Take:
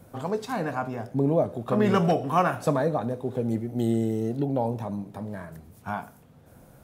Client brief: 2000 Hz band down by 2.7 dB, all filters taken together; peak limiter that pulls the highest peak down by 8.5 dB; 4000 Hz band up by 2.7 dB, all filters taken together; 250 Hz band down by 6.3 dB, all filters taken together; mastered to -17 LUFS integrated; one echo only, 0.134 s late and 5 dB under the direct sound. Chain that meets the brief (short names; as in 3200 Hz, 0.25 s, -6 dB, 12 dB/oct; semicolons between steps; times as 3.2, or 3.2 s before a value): bell 250 Hz -8.5 dB; bell 2000 Hz -5 dB; bell 4000 Hz +6 dB; limiter -19.5 dBFS; echo 0.134 s -5 dB; gain +13.5 dB